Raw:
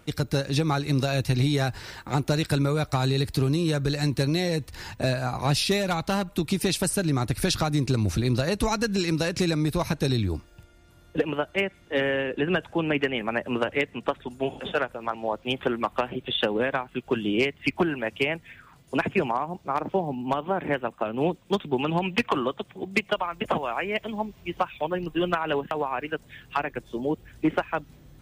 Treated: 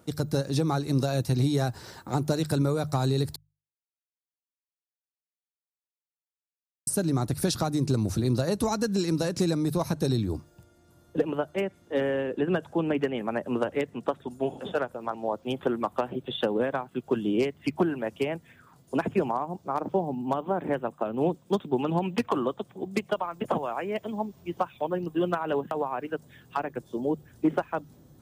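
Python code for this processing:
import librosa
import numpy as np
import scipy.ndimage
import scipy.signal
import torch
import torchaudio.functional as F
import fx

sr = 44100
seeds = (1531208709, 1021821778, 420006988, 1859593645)

y = fx.edit(x, sr, fx.silence(start_s=3.36, length_s=3.51), tone=tone)
y = scipy.signal.sosfilt(scipy.signal.butter(2, 96.0, 'highpass', fs=sr, output='sos'), y)
y = fx.peak_eq(y, sr, hz=2400.0, db=-12.0, octaves=1.4)
y = fx.hum_notches(y, sr, base_hz=50, count=3)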